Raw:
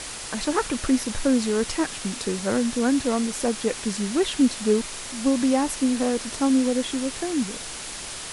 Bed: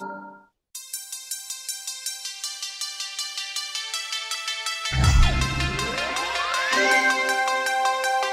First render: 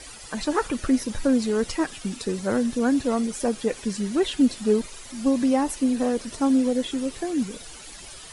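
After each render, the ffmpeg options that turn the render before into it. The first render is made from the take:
-af "afftdn=nr=12:nf=-35"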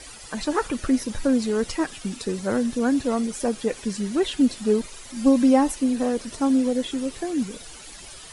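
-filter_complex "[0:a]asettb=1/sr,asplit=3[s0][s1][s2];[s0]atrim=end=5.164[s3];[s1]atrim=start=5.16:end=5.72,asetpts=PTS-STARTPTS,afade=t=in:d=0.004:c=qsin,afade=t=out:st=0.556:d=0.004:c=qsin,aecho=1:1:3.8:0.65,atrim=end_sample=24696[s4];[s2]atrim=start=5.716[s5];[s3][s4]acrossfade=d=0.004:c1=hsin:c2=qsin[s6];[s6][s5]acrossfade=d=0.004:c1=qsin:c2=hsin"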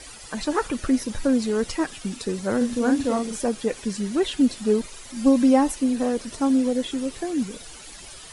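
-filter_complex "[0:a]asettb=1/sr,asplit=3[s0][s1][s2];[s0]atrim=end=2.574[s3];[s1]atrim=start=2.57:end=3.41,asetpts=PTS-STARTPTS,afade=t=in:d=0.004:c=qsin,afade=t=out:st=0.836:d=0.004:c=qsin,asplit=2[s4][s5];[s5]adelay=41,volume=0.562[s6];[s4][s6]amix=inputs=2:normalize=0,atrim=end_sample=37044[s7];[s2]atrim=start=3.406[s8];[s3][s7]acrossfade=d=0.004:c1=hsin:c2=qsin[s9];[s9][s8]acrossfade=d=0.004:c1=qsin:c2=hsin"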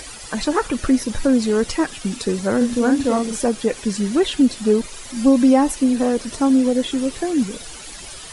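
-filter_complex "[0:a]asplit=2[s0][s1];[s1]alimiter=limit=0.168:level=0:latency=1:release=319,volume=1[s2];[s0][s2]amix=inputs=2:normalize=0,acompressor=mode=upward:threshold=0.0158:ratio=2.5"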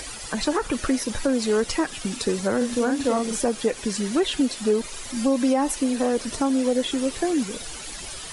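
-filter_complex "[0:a]acrossover=split=360[s0][s1];[s0]acompressor=threshold=0.0447:ratio=6[s2];[s1]alimiter=limit=0.178:level=0:latency=1:release=159[s3];[s2][s3]amix=inputs=2:normalize=0"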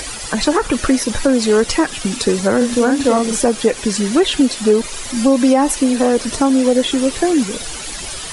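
-af "volume=2.66"

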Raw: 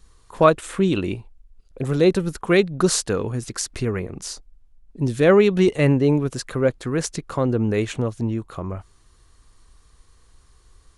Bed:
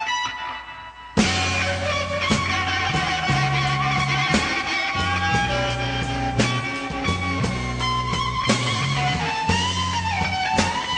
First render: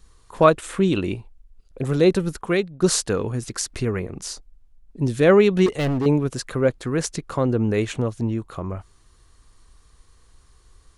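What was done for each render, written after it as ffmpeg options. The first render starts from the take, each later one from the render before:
-filter_complex "[0:a]asettb=1/sr,asplit=3[s0][s1][s2];[s0]atrim=end=5.664[s3];[s1]atrim=start=5.66:end=6.06,asetpts=PTS-STARTPTS,afade=t=in:d=0.004:c=qsin,afade=t=out:st=0.396:d=0.004:c=qsin,volume=9.44,asoftclip=hard,volume=0.106[s4];[s2]atrim=start=6.056[s5];[s3][s4]acrossfade=d=0.004:c1=hsin:c2=qsin[s6];[s6][s5]acrossfade=d=0.004:c1=qsin:c2=hsin,asplit=2[s7][s8];[s7]atrim=end=2.82,asetpts=PTS-STARTPTS,afade=t=out:st=2.3:d=0.52:silence=0.188365[s9];[s8]atrim=start=2.82,asetpts=PTS-STARTPTS,afade=t=in:d=0.004:c=hsin:silence=0.188365[s10];[s9][s10]concat=n=2:v=0:a=1"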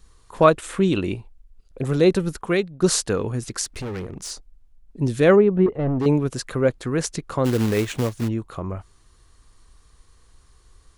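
-filter_complex "[0:a]asettb=1/sr,asplit=3[s0][s1][s2];[s0]atrim=end=3.654[s3];[s1]atrim=start=3.65:end=4.31,asetpts=PTS-STARTPTS,afade=t=in:d=0.004:c=qsin,afade=t=out:st=0.656:d=0.004:c=qsin,asoftclip=type=hard:threshold=0.0422[s4];[s2]atrim=start=4.306[s5];[s3][s4]acrossfade=d=0.004:c1=hsin:c2=qsin[s6];[s6][s5]acrossfade=d=0.004:c1=qsin:c2=hsin,asplit=3[s7][s8][s9];[s7]afade=t=out:st=5.35:d=0.02[s10];[s8]lowpass=1000,afade=t=in:st=5.35:d=0.02,afade=t=out:st=5.98:d=0.02[s11];[s9]afade=t=in:st=5.98:d=0.02[s12];[s10][s11][s12]amix=inputs=3:normalize=0,asplit=3[s13][s14][s15];[s13]afade=t=out:st=7.44:d=0.02[s16];[s14]acrusher=bits=3:mode=log:mix=0:aa=0.000001,afade=t=in:st=7.44:d=0.02,afade=t=out:st=8.27:d=0.02[s17];[s15]afade=t=in:st=8.27:d=0.02[s18];[s16][s17][s18]amix=inputs=3:normalize=0"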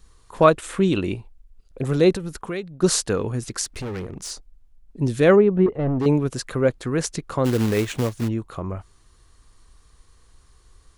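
-filter_complex "[0:a]asettb=1/sr,asplit=3[s0][s1][s2];[s0]atrim=end=2.164[s3];[s1]atrim=start=2.16:end=2.83,asetpts=PTS-STARTPTS,afade=t=in:d=0.004:c=qsin,afade=t=out:st=0.666:d=0.004:c=qsin,acompressor=threshold=0.0447:ratio=3:attack=3.2:release=140:knee=1:detection=peak[s4];[s2]atrim=start=2.826[s5];[s3][s4]acrossfade=d=0.004:c1=hsin:c2=qsin[s6];[s6][s5]acrossfade=d=0.004:c1=qsin:c2=hsin"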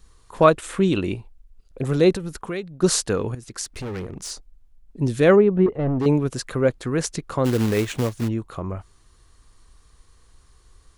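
-filter_complex "[0:a]asplit=2[s0][s1];[s0]atrim=end=3.35,asetpts=PTS-STARTPTS,afade=t=out:st=3.346:d=0.004:c=hsin:silence=0.199526[s2];[s1]atrim=start=3.35,asetpts=PTS-STARTPTS,afade=t=in:d=0.7:c=qsin:silence=0.199526[s3];[s2][s3]concat=n=2:v=0:a=1"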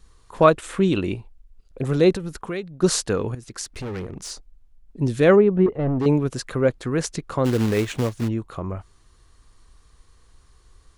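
-af "highshelf=f=8800:g=-5"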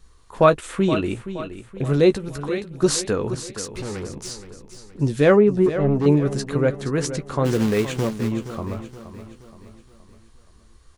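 -filter_complex "[0:a]asplit=2[s0][s1];[s1]adelay=14,volume=0.335[s2];[s0][s2]amix=inputs=2:normalize=0,asplit=2[s3][s4];[s4]aecho=0:1:472|944|1416|1888|2360:0.251|0.116|0.0532|0.0244|0.0112[s5];[s3][s5]amix=inputs=2:normalize=0"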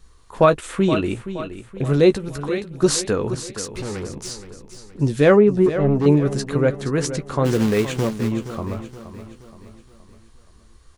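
-af "volume=1.19,alimiter=limit=0.708:level=0:latency=1"

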